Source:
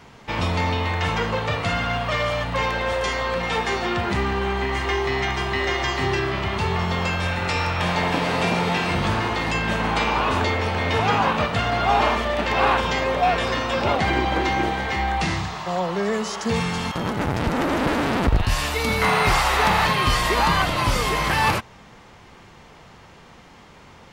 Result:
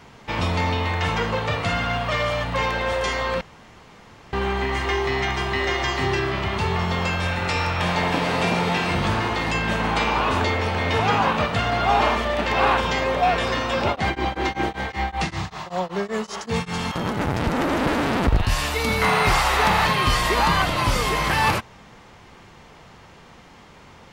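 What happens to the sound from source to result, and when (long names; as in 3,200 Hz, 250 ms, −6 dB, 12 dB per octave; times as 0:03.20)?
0:03.41–0:04.33: fill with room tone
0:13.87–0:16.79: tremolo along a rectified sine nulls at 5.2 Hz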